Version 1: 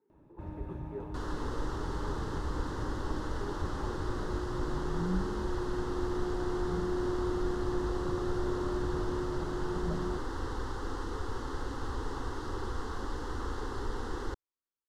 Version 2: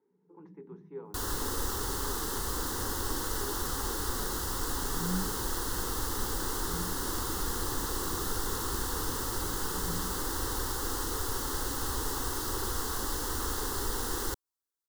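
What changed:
first sound: add flat-topped band-pass 180 Hz, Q 7
second sound: remove head-to-tape spacing loss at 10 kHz 27 dB

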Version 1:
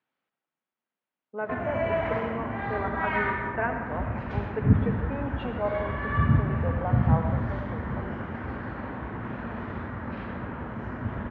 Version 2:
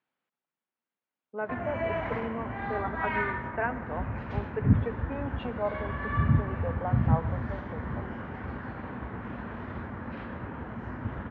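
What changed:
speech: send −11.0 dB
background: send off

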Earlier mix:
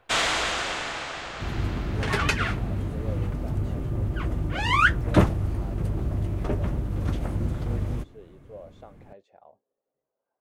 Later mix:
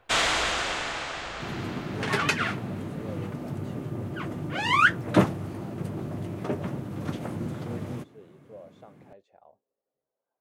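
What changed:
speech −3.0 dB
second sound: add high-pass filter 130 Hz 24 dB per octave

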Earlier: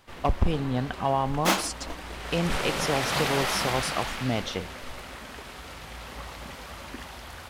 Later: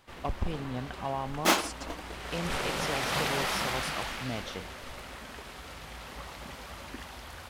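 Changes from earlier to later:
speech −8.5 dB
first sound: send off

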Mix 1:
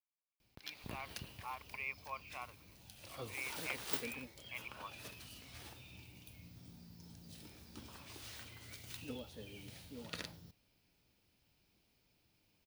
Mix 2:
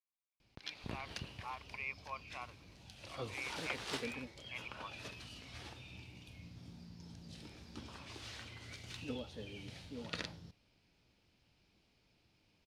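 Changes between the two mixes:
background +3.5 dB
master: add low-pass filter 5,800 Hz 12 dB per octave

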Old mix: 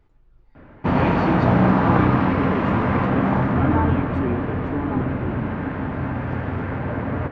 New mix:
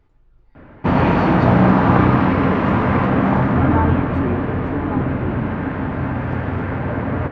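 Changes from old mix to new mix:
speech: send +6.5 dB
background +3.5 dB

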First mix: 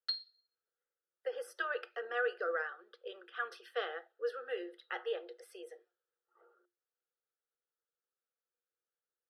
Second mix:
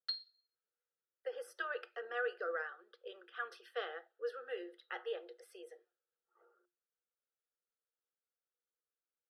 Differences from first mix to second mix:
speech −3.5 dB
background −3.0 dB

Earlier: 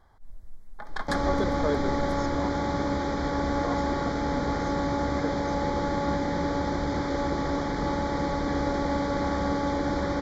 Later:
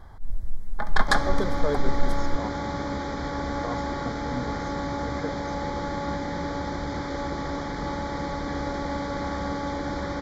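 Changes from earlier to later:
first sound +10.0 dB
second sound: add low-shelf EQ 490 Hz −8 dB
master: add bass and treble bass +6 dB, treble −1 dB

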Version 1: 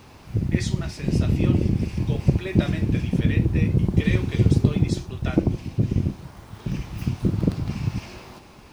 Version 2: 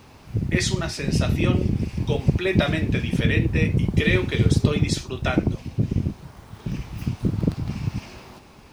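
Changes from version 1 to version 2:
speech +8.5 dB
reverb: off

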